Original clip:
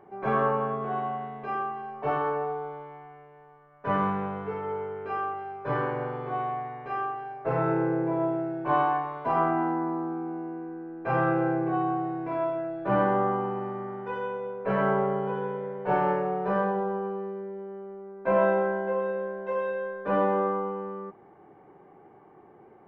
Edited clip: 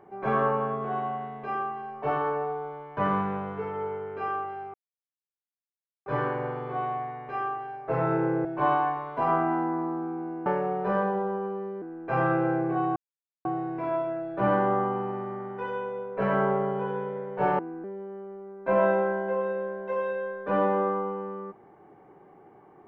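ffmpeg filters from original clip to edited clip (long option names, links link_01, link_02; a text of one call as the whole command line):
ffmpeg -i in.wav -filter_complex "[0:a]asplit=9[link_01][link_02][link_03][link_04][link_05][link_06][link_07][link_08][link_09];[link_01]atrim=end=2.972[link_10];[link_02]atrim=start=3.858:end=5.63,asetpts=PTS-STARTPTS,afade=type=out:start_time=1.768:duration=0.004:curve=hsin,apad=pad_dur=1.32[link_11];[link_03]atrim=start=5.63:end=8.022,asetpts=PTS-STARTPTS,afade=type=in:duration=0.004:curve=hsin[link_12];[link_04]atrim=start=8.528:end=10.542[link_13];[link_05]atrim=start=16.068:end=17.432[link_14];[link_06]atrim=start=10.788:end=11.93,asetpts=PTS-STARTPTS,afade=type=out:start_time=1.138:duration=0.004:curve=hsin,apad=pad_dur=0.49[link_15];[link_07]atrim=start=11.93:end=16.072,asetpts=PTS-STARTPTS,afade=type=in:duration=0.004:curve=hsin[link_16];[link_08]atrim=start=10.538:end=10.792[link_17];[link_09]atrim=start=17.428[link_18];[link_11][link_12]concat=n=2:v=0:a=1[link_19];[link_10][link_19]acrossfade=duration=0.004:curve1=hsin:curve2=hsin[link_20];[link_20][link_13]acrossfade=duration=0.004:curve1=hsin:curve2=hsin[link_21];[link_21][link_14]acrossfade=duration=0.004:curve1=hsin:curve2=hsin[link_22];[link_15][link_16]concat=n=2:v=0:a=1[link_23];[link_22][link_23]acrossfade=duration=0.004:curve1=hsin:curve2=hsin[link_24];[link_24][link_17]acrossfade=duration=0.004:curve1=hsin:curve2=hsin[link_25];[link_25][link_18]acrossfade=duration=0.004:curve1=hsin:curve2=hsin" out.wav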